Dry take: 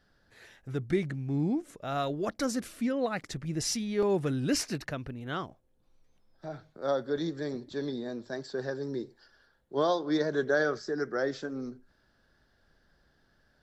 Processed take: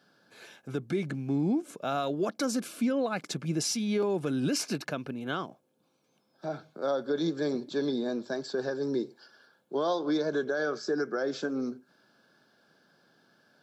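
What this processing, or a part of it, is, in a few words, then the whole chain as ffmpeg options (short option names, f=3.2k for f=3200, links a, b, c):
PA system with an anti-feedback notch: -af "highpass=f=160:w=0.5412,highpass=f=160:w=1.3066,asuperstop=centerf=1900:order=4:qfactor=6,alimiter=level_in=2dB:limit=-24dB:level=0:latency=1:release=179,volume=-2dB,volume=5.5dB"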